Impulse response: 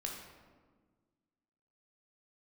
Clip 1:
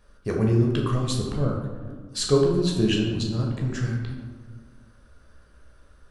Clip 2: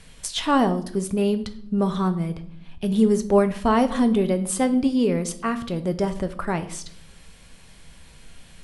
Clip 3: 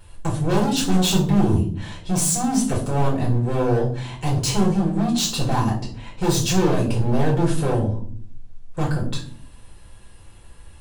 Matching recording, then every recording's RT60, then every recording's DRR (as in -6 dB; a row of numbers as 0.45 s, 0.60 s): 1; 1.5 s, 0.70 s, 0.50 s; -1.0 dB, 8.5 dB, -6.0 dB